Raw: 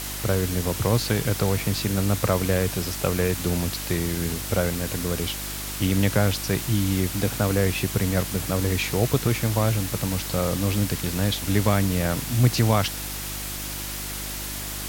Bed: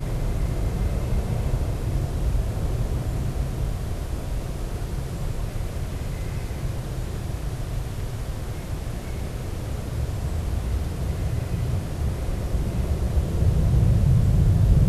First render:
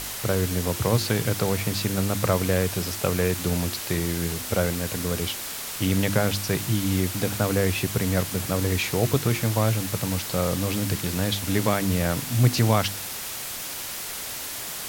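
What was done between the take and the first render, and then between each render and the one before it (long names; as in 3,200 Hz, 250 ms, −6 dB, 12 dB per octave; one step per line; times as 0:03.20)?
hum removal 50 Hz, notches 7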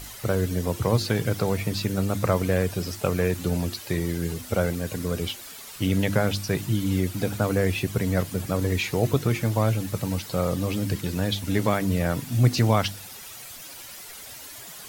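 broadband denoise 11 dB, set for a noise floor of −34 dBFS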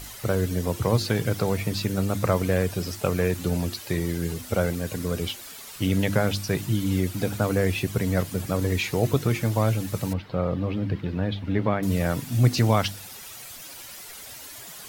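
0:10.13–0:11.83: high-frequency loss of the air 360 metres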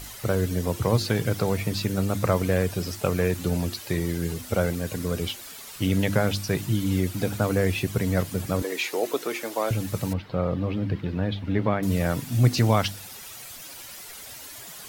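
0:08.62–0:09.71: high-pass filter 320 Hz 24 dB per octave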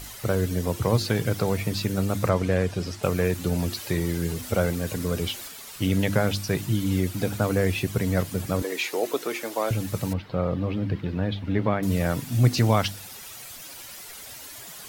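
0:02.29–0:03.03: high-frequency loss of the air 50 metres
0:03.58–0:05.48: mu-law and A-law mismatch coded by mu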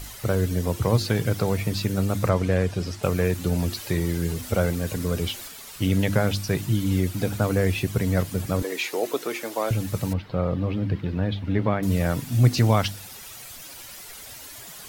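low-shelf EQ 80 Hz +6 dB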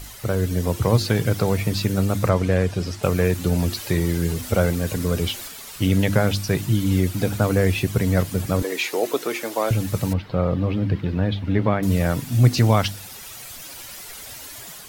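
automatic gain control gain up to 3.5 dB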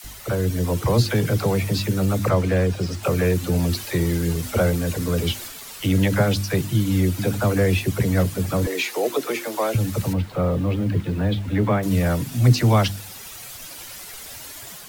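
all-pass dispersion lows, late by 47 ms, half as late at 520 Hz
bit reduction 8 bits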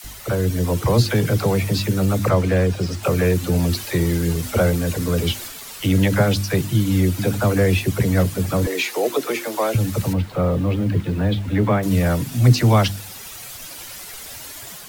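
level +2 dB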